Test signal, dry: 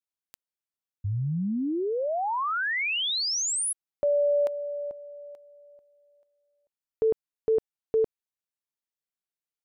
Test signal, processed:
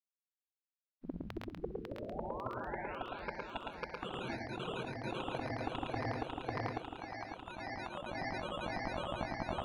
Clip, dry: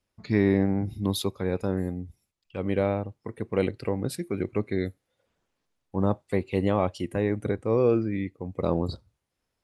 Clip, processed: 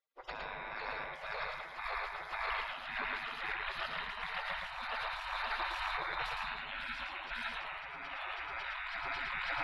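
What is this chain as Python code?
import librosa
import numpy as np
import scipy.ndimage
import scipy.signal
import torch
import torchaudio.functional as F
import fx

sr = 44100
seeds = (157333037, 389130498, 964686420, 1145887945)

y = fx.reverse_delay_fb(x, sr, ms=274, feedback_pct=82, wet_db=-3.0)
y = fx.spec_gate(y, sr, threshold_db=-30, keep='weak')
y = fx.peak_eq(y, sr, hz=500.0, db=5.5, octaves=2.2)
y = fx.over_compress(y, sr, threshold_db=-54.0, ratio=-1.0)
y = fx.air_absorb(y, sr, metres=360.0)
y = fx.echo_multitap(y, sr, ms=(63, 111, 139), db=(-15.0, -3.0, -16.5))
y = F.gain(torch.from_numpy(y), 15.0).numpy()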